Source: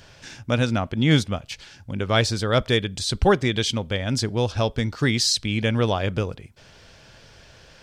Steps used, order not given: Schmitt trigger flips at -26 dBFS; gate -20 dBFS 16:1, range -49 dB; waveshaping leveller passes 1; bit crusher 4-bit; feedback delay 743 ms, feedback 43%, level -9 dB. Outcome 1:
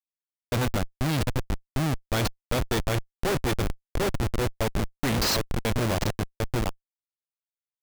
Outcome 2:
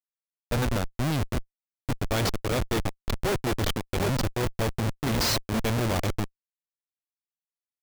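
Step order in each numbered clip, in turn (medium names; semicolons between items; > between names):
gate > waveshaping leveller > feedback delay > bit crusher > Schmitt trigger; feedback delay > bit crusher > gate > Schmitt trigger > waveshaping leveller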